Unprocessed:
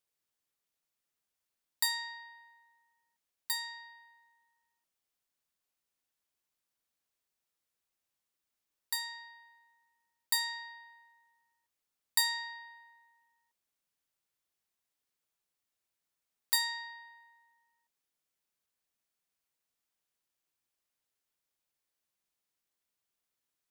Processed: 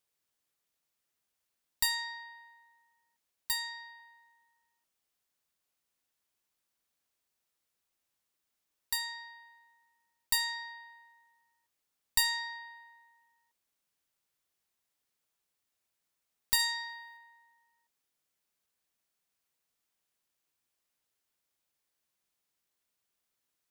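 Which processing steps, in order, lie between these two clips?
single-diode clipper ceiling -26.5 dBFS; 3.53–4.00 s: high-pass 600 Hz; 16.59–17.17 s: treble shelf 5.9 kHz +7.5 dB; trim +3 dB

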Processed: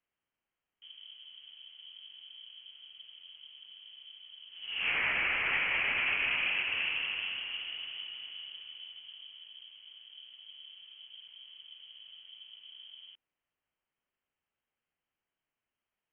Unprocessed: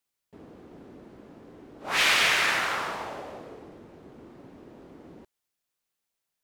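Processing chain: peak limiter -17.5 dBFS, peak gain reduction 7 dB; wide varispeed 0.399×; frequency inversion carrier 3.2 kHz; trim -4 dB

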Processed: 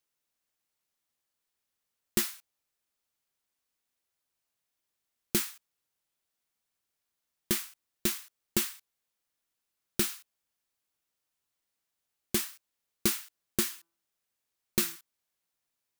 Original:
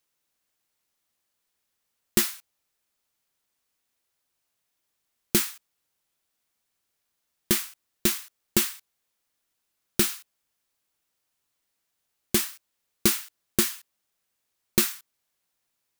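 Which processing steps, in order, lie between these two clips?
13.62–14.96 s: de-hum 167.6 Hz, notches 9; trim -6 dB

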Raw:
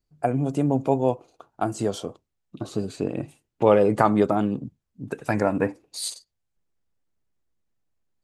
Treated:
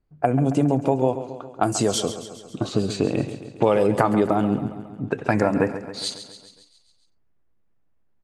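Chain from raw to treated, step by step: 1.63–3.87 s: treble shelf 3.7 kHz +11 dB; level-controlled noise filter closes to 2 kHz, open at -19.5 dBFS; compression 4:1, threshold -23 dBFS, peak gain reduction 10.5 dB; feedback delay 137 ms, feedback 59%, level -12 dB; trim +7 dB

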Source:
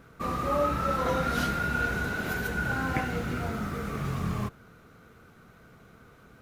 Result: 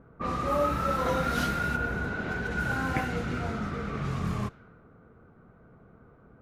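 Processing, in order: level-controlled noise filter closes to 900 Hz, open at -24.5 dBFS; 1.75–2.50 s: treble shelf 2.2 kHz -> 4.3 kHz -11.5 dB

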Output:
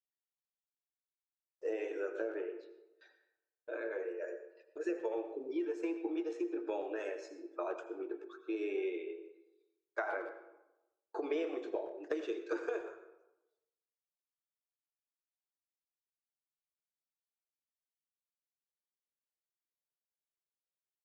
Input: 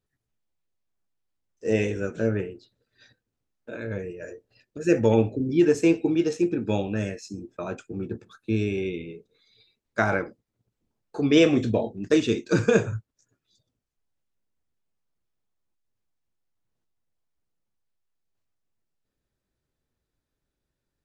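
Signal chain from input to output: coarse spectral quantiser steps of 15 dB; elliptic high-pass 330 Hz, stop band 40 dB; gate with hold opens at -50 dBFS; low-pass 2.5 kHz 6 dB/octave; peaking EQ 870 Hz +7 dB 2.2 oct; compression 16:1, threshold -26 dBFS, peak gain reduction 16 dB; speakerphone echo 120 ms, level -16 dB; reverberation RT60 1.0 s, pre-delay 76 ms, DRR 10 dB; trim -7 dB

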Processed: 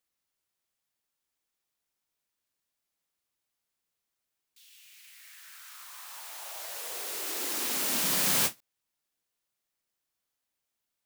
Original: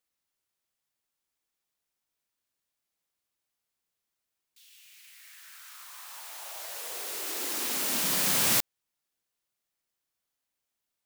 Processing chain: endings held to a fixed fall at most 380 dB/s

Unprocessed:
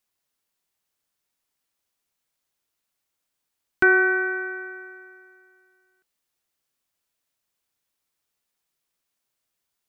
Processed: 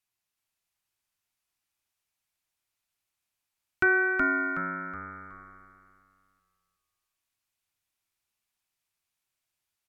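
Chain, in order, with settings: graphic EQ with 31 bands 100 Hz +9 dB, 250 Hz -6 dB, 500 Hz -12 dB, 2.5 kHz +4 dB; low-pass that closes with the level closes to 2.4 kHz, closed at -30 dBFS; frequency-shifting echo 371 ms, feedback 34%, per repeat -97 Hz, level -4 dB; trim -5 dB

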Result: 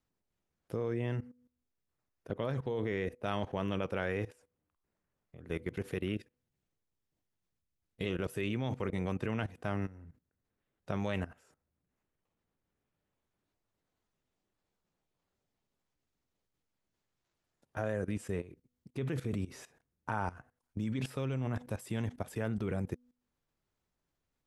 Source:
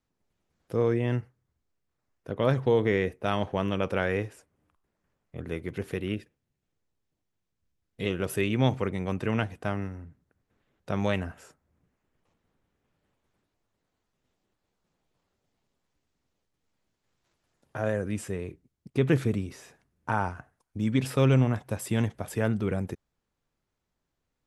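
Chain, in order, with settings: de-hum 245.8 Hz, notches 2; level held to a coarse grid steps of 17 dB

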